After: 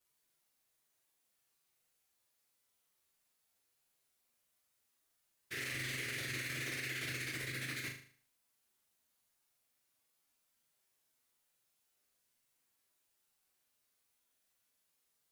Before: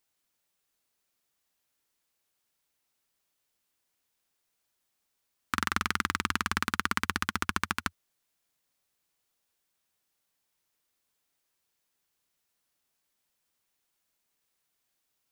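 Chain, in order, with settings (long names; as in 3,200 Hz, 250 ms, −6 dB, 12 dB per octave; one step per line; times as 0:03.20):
phase-vocoder pitch shift without resampling +7 semitones
parametric band 11,000 Hz +3.5 dB 0.64 octaves
in parallel at +3 dB: compressor whose output falls as the input rises −39 dBFS
on the sum: brickwall limiter −26.5 dBFS, peak gain reduction 9 dB
on a send: flutter between parallel walls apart 6.6 metres, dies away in 0.49 s
on the sum: level −6.5 dB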